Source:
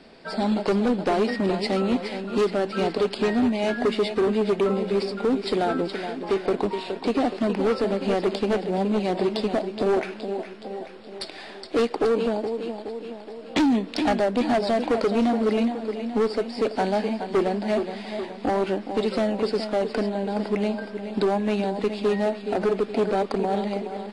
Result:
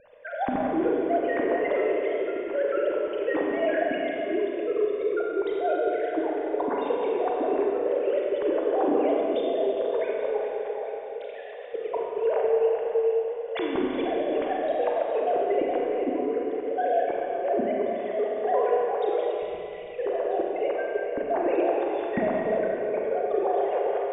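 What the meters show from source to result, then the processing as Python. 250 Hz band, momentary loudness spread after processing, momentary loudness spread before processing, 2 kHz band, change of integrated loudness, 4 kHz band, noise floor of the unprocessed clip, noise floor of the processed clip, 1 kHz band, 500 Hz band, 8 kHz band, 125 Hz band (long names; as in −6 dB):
−7.0 dB, 6 LU, 9 LU, −2.5 dB, −2.0 dB, −11.5 dB, −40 dBFS, −36 dBFS, −0.5 dB, 0.0 dB, below −35 dB, below −15 dB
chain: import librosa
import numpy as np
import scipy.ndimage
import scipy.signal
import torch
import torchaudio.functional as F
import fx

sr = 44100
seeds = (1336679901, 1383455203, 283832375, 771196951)

y = fx.sine_speech(x, sr)
y = fx.spec_erase(y, sr, start_s=19.2, length_s=0.79, low_hz=250.0, high_hz=1900.0)
y = fx.low_shelf(y, sr, hz=200.0, db=11.5)
y = fx.notch(y, sr, hz=1300.0, q=8.4)
y = fx.hpss(y, sr, part='harmonic', gain_db=-5)
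y = fx.high_shelf(y, sr, hz=2200.0, db=-10.5)
y = fx.over_compress(y, sr, threshold_db=-28.0, ratio=-0.5)
y = fx.rev_schroeder(y, sr, rt60_s=3.0, comb_ms=31, drr_db=-2.5)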